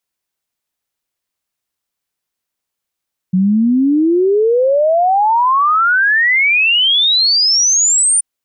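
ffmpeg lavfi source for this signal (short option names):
-f lavfi -i "aevalsrc='0.355*clip(min(t,4.88-t)/0.01,0,1)*sin(2*PI*180*4.88/log(9300/180)*(exp(log(9300/180)*t/4.88)-1))':d=4.88:s=44100"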